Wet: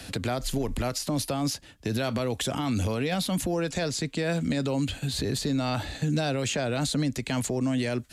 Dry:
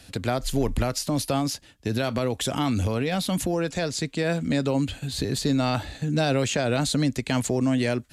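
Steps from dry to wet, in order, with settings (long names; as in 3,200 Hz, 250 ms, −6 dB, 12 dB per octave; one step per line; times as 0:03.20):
brickwall limiter −19 dBFS, peak gain reduction 7 dB
multiband upward and downward compressor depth 40%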